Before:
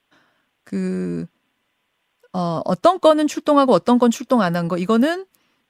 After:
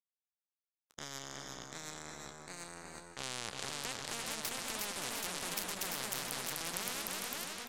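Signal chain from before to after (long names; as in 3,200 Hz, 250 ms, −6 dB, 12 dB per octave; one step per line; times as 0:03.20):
low-shelf EQ 200 Hz −5.5 dB
brickwall limiter −13.5 dBFS, peak gain reduction 11 dB
high-shelf EQ 4,700 Hz +8.5 dB
power curve on the samples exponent 3
delay with pitch and tempo change per echo 628 ms, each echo +2 semitones, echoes 3
single-tap delay 269 ms −10 dB
wrong playback speed 45 rpm record played at 33 rpm
single-tap delay 342 ms −9.5 dB
every bin compressed towards the loudest bin 4 to 1
level −2.5 dB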